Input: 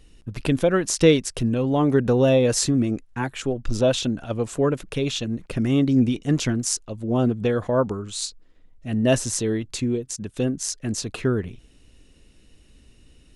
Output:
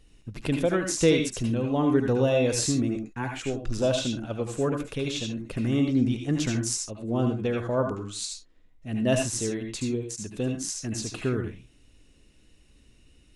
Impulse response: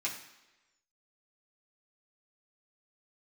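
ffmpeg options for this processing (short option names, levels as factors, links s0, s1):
-filter_complex "[0:a]asplit=2[s0][s1];[1:a]atrim=start_sample=2205,atrim=end_sample=3087,adelay=72[s2];[s1][s2]afir=irnorm=-1:irlink=0,volume=0.531[s3];[s0][s3]amix=inputs=2:normalize=0,volume=0.531"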